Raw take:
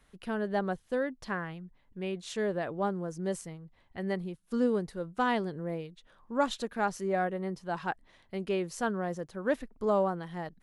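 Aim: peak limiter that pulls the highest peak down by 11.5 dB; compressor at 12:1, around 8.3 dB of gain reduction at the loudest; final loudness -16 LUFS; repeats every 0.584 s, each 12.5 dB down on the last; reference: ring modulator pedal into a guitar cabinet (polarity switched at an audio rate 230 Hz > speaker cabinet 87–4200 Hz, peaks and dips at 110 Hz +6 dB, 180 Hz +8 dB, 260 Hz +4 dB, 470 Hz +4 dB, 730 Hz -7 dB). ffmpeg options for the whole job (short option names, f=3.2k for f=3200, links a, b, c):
-af "acompressor=threshold=-30dB:ratio=12,alimiter=level_in=9.5dB:limit=-24dB:level=0:latency=1,volume=-9.5dB,aecho=1:1:584|1168|1752:0.237|0.0569|0.0137,aeval=exprs='val(0)*sgn(sin(2*PI*230*n/s))':c=same,highpass=87,equalizer=f=110:t=q:w=4:g=6,equalizer=f=180:t=q:w=4:g=8,equalizer=f=260:t=q:w=4:g=4,equalizer=f=470:t=q:w=4:g=4,equalizer=f=730:t=q:w=4:g=-7,lowpass=f=4.2k:w=0.5412,lowpass=f=4.2k:w=1.3066,volume=26dB"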